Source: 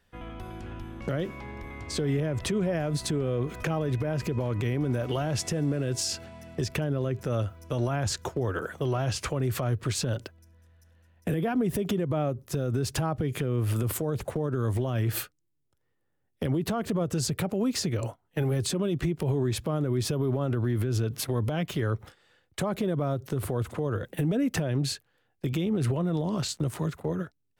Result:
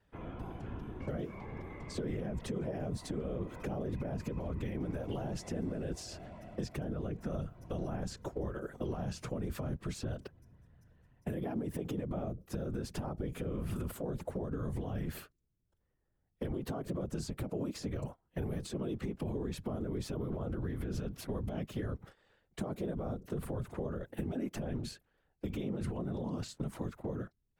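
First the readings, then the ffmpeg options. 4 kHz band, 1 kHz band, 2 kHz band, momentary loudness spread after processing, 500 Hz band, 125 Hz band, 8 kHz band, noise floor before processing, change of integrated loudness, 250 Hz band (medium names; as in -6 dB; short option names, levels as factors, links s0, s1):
-14.5 dB, -10.5 dB, -12.5 dB, 6 LU, -9.5 dB, -11.0 dB, -15.5 dB, -74 dBFS, -10.0 dB, -8.5 dB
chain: -filter_complex "[0:a]highshelf=f=2400:g=-10,afftfilt=real='hypot(re,im)*cos(2*PI*random(0))':imag='hypot(re,im)*sin(2*PI*random(1))':win_size=512:overlap=0.75,acrossover=split=710|4800[s0][s1][s2];[s0]acompressor=threshold=0.0126:ratio=4[s3];[s1]acompressor=threshold=0.002:ratio=4[s4];[s2]acompressor=threshold=0.00251:ratio=4[s5];[s3][s4][s5]amix=inputs=3:normalize=0,volume=1.41"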